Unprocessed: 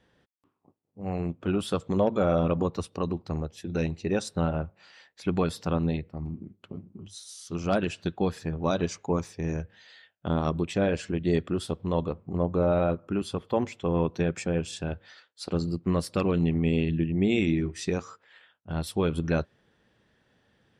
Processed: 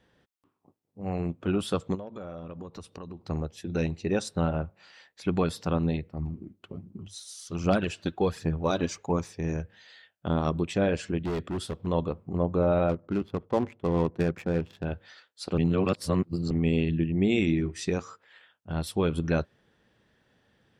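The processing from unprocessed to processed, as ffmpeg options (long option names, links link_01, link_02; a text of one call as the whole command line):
ffmpeg -i in.wav -filter_complex "[0:a]asplit=3[link_01][link_02][link_03];[link_01]afade=type=out:start_time=1.94:duration=0.02[link_04];[link_02]acompressor=threshold=-39dB:ratio=4:attack=3.2:release=140:knee=1:detection=peak,afade=type=in:start_time=1.94:duration=0.02,afade=type=out:start_time=3.26:duration=0.02[link_05];[link_03]afade=type=in:start_time=3.26:duration=0.02[link_06];[link_04][link_05][link_06]amix=inputs=3:normalize=0,asplit=3[link_07][link_08][link_09];[link_07]afade=type=out:start_time=6.17:duration=0.02[link_10];[link_08]aphaser=in_gain=1:out_gain=1:delay=3.8:decay=0.39:speed=1.3:type=triangular,afade=type=in:start_time=6.17:duration=0.02,afade=type=out:start_time=9.11:duration=0.02[link_11];[link_09]afade=type=in:start_time=9.11:duration=0.02[link_12];[link_10][link_11][link_12]amix=inputs=3:normalize=0,asettb=1/sr,asplit=3[link_13][link_14][link_15];[link_13]atrim=end=11.224[link_16];[link_14]atrim=start=11.22:end=11.87,asetpts=PTS-STARTPTS,afade=type=in:duration=0.004:curve=qsin,afade=type=out:start_time=0.646:duration=0.004:curve=qsin,volume=27.5dB,asoftclip=hard,volume=-27.5dB[link_17];[link_15]atrim=start=11.866[link_18];[link_16][link_17]acrossfade=duration=0.004:curve1=hsin:curve2=qsin[link_19];[link_19][link_18]acrossfade=duration=0.004:curve1=qsin:curve2=hsin,asplit=3[link_20][link_21][link_22];[link_20]afade=type=out:start_time=12.88:duration=0.02[link_23];[link_21]adynamicsmooth=sensitivity=6:basefreq=600,afade=type=in:start_time=12.88:duration=0.02,afade=type=out:start_time=14.84:duration=0.02[link_24];[link_22]afade=type=in:start_time=14.84:duration=0.02[link_25];[link_23][link_24][link_25]amix=inputs=3:normalize=0,asplit=3[link_26][link_27][link_28];[link_26]atrim=end=15.582[link_29];[link_27]atrim=start=15.578:end=16.512,asetpts=PTS-STARTPTS,areverse[link_30];[link_28]atrim=start=16.508[link_31];[link_29][link_30]acrossfade=duration=0.004:curve1=hsin:curve2=hsin[link_32];[link_32][link_31]acrossfade=duration=0.004:curve1=hsin:curve2=hsin" out.wav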